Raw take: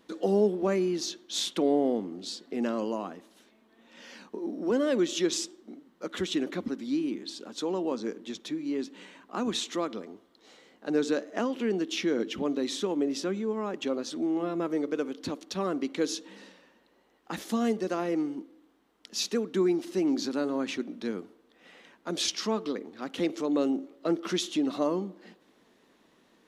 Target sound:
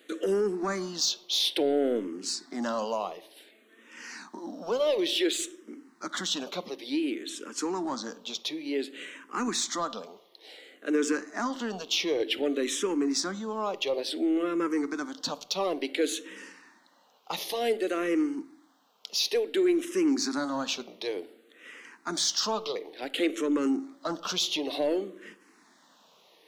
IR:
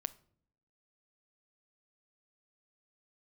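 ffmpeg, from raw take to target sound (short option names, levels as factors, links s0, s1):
-filter_complex "[0:a]highpass=290,tiltshelf=f=1300:g=-3,alimiter=limit=0.075:level=0:latency=1:release=31,asoftclip=type=tanh:threshold=0.0631,asplit=2[s0][s1];[1:a]atrim=start_sample=2205[s2];[s1][s2]afir=irnorm=-1:irlink=0,volume=2.82[s3];[s0][s3]amix=inputs=2:normalize=0,asplit=2[s4][s5];[s5]afreqshift=-0.56[s6];[s4][s6]amix=inputs=2:normalize=1,volume=0.75"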